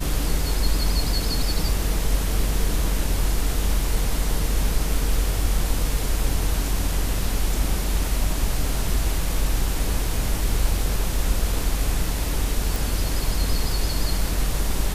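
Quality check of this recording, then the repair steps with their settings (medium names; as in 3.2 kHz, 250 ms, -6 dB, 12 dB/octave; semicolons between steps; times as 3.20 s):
12.76 s: pop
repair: de-click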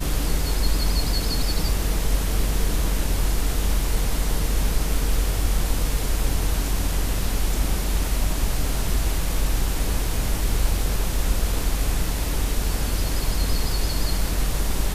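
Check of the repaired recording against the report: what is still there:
nothing left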